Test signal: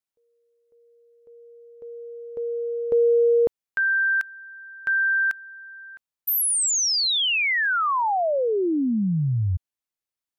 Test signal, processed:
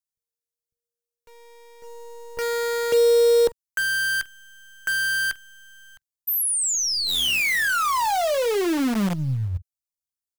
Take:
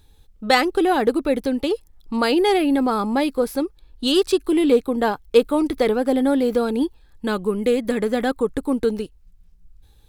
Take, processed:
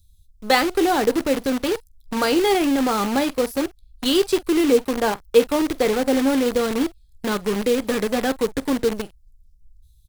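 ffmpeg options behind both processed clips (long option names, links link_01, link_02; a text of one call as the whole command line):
ffmpeg -i in.wav -filter_complex "[0:a]aecho=1:1:15|45:0.2|0.15,acrossover=split=150|4000[link_01][link_02][link_03];[link_02]acrusher=bits=5:dc=4:mix=0:aa=0.000001[link_04];[link_01][link_04][link_03]amix=inputs=3:normalize=0,volume=-1dB" out.wav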